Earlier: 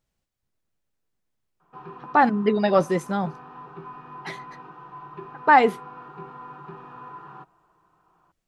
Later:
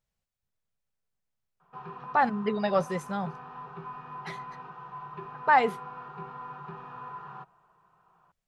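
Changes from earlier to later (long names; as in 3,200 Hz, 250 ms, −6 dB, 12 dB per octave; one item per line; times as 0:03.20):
speech −5.5 dB
master: add parametric band 310 Hz −13.5 dB 0.42 octaves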